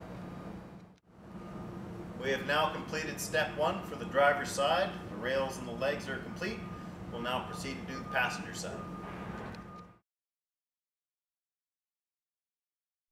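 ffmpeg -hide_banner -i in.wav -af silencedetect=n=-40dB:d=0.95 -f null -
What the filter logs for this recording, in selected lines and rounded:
silence_start: 9.80
silence_end: 13.11 | silence_duration: 3.31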